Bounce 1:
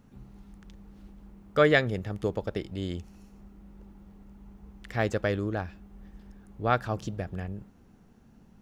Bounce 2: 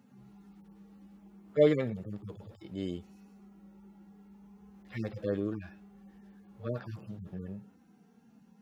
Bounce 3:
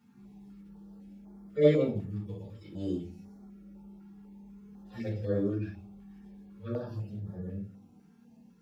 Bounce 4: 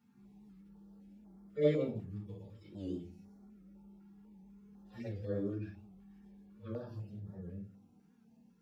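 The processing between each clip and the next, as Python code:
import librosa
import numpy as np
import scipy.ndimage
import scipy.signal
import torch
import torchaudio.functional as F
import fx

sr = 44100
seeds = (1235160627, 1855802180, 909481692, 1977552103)

y1 = fx.hpss_only(x, sr, part='harmonic')
y1 = scipy.signal.sosfilt(scipy.signal.butter(2, 160.0, 'highpass', fs=sr, output='sos'), y1)
y2 = fx.room_shoebox(y1, sr, seeds[0], volume_m3=170.0, walls='furnished', distance_m=4.6)
y2 = fx.filter_held_notch(y2, sr, hz=4.0, low_hz=570.0, high_hz=2700.0)
y2 = F.gain(torch.from_numpy(y2), -7.5).numpy()
y3 = fx.record_warp(y2, sr, rpm=78.0, depth_cents=100.0)
y3 = F.gain(torch.from_numpy(y3), -7.0).numpy()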